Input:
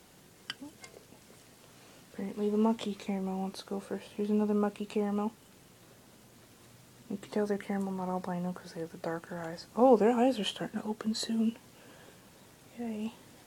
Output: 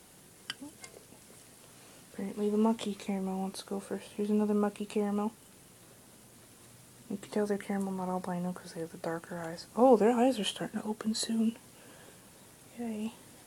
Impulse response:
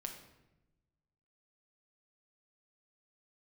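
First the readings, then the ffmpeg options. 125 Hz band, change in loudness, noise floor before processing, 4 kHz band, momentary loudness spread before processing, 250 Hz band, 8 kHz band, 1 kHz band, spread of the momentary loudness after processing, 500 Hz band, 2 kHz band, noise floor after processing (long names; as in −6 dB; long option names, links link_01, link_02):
0.0 dB, 0.0 dB, −58 dBFS, +0.5 dB, 16 LU, 0.0 dB, +4.5 dB, 0.0 dB, 16 LU, 0.0 dB, 0.0 dB, −57 dBFS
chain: -af "equalizer=frequency=10000:width=1.7:gain=8.5"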